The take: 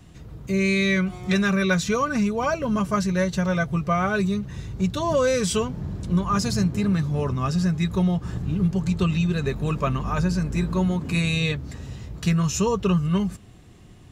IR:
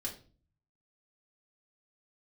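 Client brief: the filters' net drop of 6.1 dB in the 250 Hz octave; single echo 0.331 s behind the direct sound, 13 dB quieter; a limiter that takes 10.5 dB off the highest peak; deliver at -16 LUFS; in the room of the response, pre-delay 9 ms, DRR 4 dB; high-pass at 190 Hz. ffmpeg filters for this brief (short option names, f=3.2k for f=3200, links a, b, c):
-filter_complex "[0:a]highpass=190,equalizer=f=250:t=o:g=-5,alimiter=limit=-20.5dB:level=0:latency=1,aecho=1:1:331:0.224,asplit=2[a][b];[1:a]atrim=start_sample=2205,adelay=9[c];[b][c]afir=irnorm=-1:irlink=0,volume=-4dB[d];[a][d]amix=inputs=2:normalize=0,volume=13dB"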